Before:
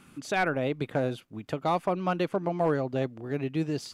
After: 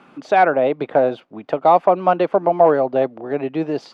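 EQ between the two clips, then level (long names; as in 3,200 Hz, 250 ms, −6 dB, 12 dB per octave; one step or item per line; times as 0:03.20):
three-way crossover with the lows and the highs turned down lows −22 dB, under 160 Hz, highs −22 dB, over 5,000 Hz
low-shelf EQ 69 Hz +7.5 dB
parametric band 700 Hz +13 dB 1.7 octaves
+3.0 dB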